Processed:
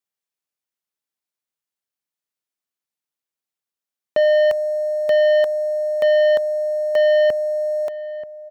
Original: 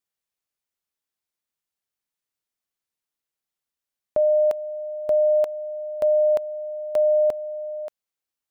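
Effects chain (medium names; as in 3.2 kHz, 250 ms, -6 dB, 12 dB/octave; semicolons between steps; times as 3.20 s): high-pass 120 Hz 12 dB/octave; waveshaping leveller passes 2; echo from a far wall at 160 m, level -14 dB; trim +2 dB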